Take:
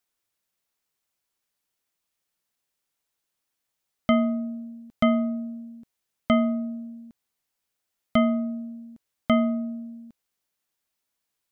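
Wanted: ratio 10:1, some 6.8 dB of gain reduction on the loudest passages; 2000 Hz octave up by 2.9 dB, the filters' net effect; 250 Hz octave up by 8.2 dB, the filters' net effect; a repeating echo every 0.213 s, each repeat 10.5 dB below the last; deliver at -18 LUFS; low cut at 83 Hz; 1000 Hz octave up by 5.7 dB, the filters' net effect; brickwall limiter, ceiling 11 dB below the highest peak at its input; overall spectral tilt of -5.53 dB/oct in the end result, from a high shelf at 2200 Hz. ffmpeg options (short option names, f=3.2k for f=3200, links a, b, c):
-af "highpass=83,equalizer=f=250:t=o:g=8.5,equalizer=f=1k:t=o:g=8,equalizer=f=2k:t=o:g=4,highshelf=f=2.2k:g=-5.5,acompressor=threshold=-15dB:ratio=10,alimiter=limit=-15.5dB:level=0:latency=1,aecho=1:1:213|426|639:0.299|0.0896|0.0269,volume=7.5dB"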